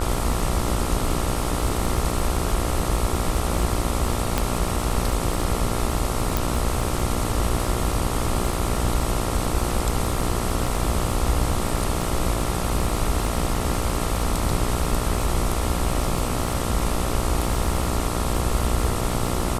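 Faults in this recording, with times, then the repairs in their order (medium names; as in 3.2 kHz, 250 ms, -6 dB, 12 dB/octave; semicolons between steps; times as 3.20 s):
buzz 60 Hz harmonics 23 -28 dBFS
crackle 25 per s -26 dBFS
4.38 s: pop -6 dBFS
6.37 s: pop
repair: de-click; de-hum 60 Hz, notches 23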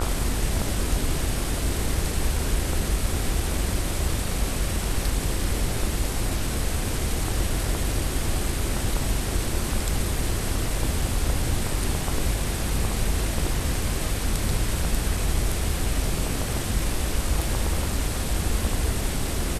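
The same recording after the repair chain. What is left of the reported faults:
nothing left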